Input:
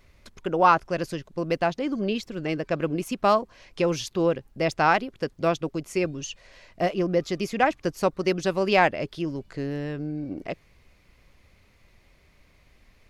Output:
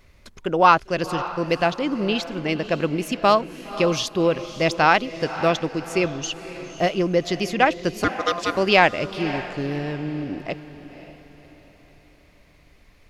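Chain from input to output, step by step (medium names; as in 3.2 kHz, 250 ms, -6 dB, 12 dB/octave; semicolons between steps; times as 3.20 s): dynamic bell 3.4 kHz, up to +6 dB, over -43 dBFS, Q 1; 8.04–8.57 s: ring modulator 860 Hz; echo that smears into a reverb 538 ms, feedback 42%, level -13 dB; trim +3 dB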